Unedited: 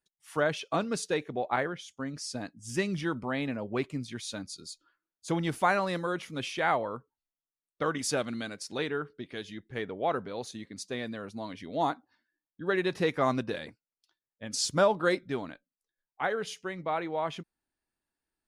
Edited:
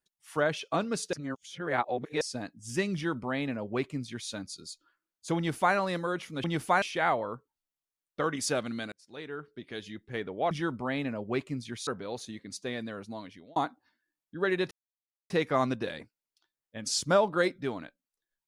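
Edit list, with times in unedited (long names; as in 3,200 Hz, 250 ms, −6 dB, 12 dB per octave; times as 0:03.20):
0:01.13–0:02.21: reverse
0:02.94–0:04.30: duplicate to 0:10.13
0:05.37–0:05.75: duplicate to 0:06.44
0:08.54–0:09.43: fade in
0:11.12–0:11.82: fade out equal-power
0:12.97: splice in silence 0.59 s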